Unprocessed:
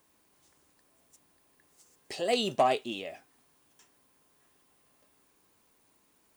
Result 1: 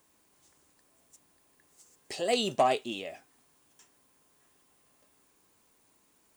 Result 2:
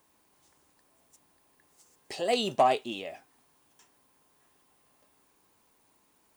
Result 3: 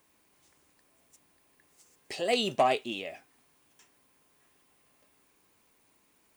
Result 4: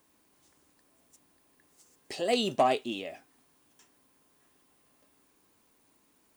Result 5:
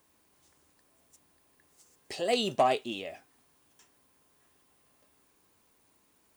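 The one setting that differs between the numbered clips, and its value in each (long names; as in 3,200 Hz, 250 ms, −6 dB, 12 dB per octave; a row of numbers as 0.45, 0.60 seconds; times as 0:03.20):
parametric band, centre frequency: 7,500, 880, 2,300, 270, 81 Hertz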